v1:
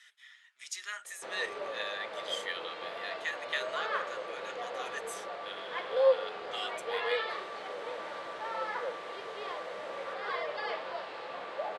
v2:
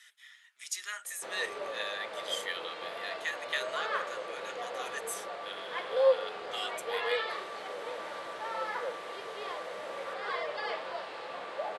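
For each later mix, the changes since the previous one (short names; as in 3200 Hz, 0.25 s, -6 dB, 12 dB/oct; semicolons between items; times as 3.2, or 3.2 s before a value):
master: remove air absorption 50 m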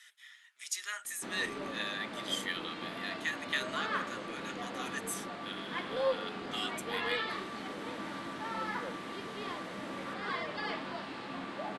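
background: add resonant low shelf 360 Hz +11.5 dB, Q 3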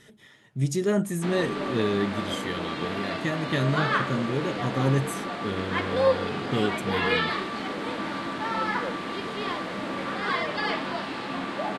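speech: remove HPF 1400 Hz 24 dB/oct; background +9.5 dB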